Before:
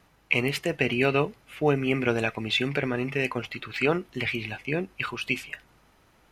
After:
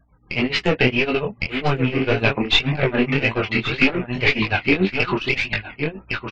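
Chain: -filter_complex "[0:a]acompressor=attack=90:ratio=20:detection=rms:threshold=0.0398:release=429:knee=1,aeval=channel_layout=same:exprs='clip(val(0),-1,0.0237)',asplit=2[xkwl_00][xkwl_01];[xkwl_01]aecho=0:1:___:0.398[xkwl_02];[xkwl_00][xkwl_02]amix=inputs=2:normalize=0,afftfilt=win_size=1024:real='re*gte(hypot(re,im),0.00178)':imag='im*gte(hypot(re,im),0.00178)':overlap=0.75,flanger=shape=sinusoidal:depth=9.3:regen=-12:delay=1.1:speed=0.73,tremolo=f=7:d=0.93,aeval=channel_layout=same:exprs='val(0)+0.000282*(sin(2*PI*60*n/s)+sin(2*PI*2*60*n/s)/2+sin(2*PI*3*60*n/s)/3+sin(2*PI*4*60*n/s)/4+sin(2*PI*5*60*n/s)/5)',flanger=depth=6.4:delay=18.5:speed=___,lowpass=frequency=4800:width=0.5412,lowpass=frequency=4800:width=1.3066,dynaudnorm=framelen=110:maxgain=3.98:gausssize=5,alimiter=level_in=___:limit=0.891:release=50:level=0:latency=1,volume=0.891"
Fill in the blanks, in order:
1108, 1.8, 4.22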